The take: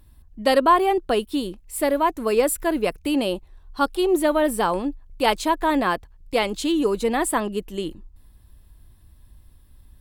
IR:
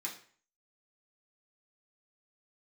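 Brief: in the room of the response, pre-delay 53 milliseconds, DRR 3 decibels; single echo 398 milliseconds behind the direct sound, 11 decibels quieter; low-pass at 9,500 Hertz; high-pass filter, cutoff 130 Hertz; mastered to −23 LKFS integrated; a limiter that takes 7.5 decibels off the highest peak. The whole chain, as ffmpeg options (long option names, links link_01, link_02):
-filter_complex "[0:a]highpass=130,lowpass=9500,alimiter=limit=-12.5dB:level=0:latency=1,aecho=1:1:398:0.282,asplit=2[link_01][link_02];[1:a]atrim=start_sample=2205,adelay=53[link_03];[link_02][link_03]afir=irnorm=-1:irlink=0,volume=-3.5dB[link_04];[link_01][link_04]amix=inputs=2:normalize=0,volume=-0.5dB"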